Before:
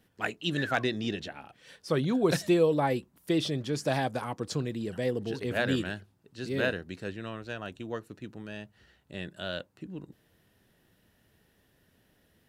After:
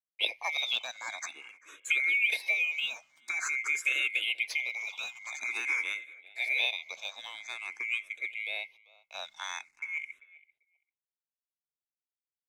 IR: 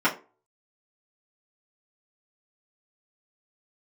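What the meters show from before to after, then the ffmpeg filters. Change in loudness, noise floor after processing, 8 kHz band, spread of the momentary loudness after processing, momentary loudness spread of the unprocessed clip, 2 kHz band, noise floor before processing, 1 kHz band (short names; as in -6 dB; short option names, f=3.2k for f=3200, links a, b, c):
0.0 dB, under -85 dBFS, +4.0 dB, 16 LU, 17 LU, +7.5 dB, -68 dBFS, -8.5 dB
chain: -filter_complex "[0:a]afftfilt=real='real(if(lt(b,920),b+92*(1-2*mod(floor(b/92),2)),b),0)':imag='imag(if(lt(b,920),b+92*(1-2*mod(floor(b/92),2)),b),0)':win_size=2048:overlap=0.75,agate=range=-47dB:threshold=-54dB:ratio=16:detection=peak,highpass=f=310:w=0.5412,highpass=f=310:w=1.3066,highshelf=f=2.4k:g=6.5,acompressor=threshold=-28dB:ratio=4,acrusher=bits=10:mix=0:aa=0.000001,adynamicsmooth=sensitivity=7:basefreq=7.6k,asplit=2[a][b];[b]adelay=392,lowpass=f=2.3k:p=1,volume=-19.5dB,asplit=2[c][d];[d]adelay=392,lowpass=f=2.3k:p=1,volume=0.2[e];[c][e]amix=inputs=2:normalize=0[f];[a][f]amix=inputs=2:normalize=0,asplit=2[g][h];[h]afreqshift=0.48[i];[g][i]amix=inputs=2:normalize=1,volume=3dB"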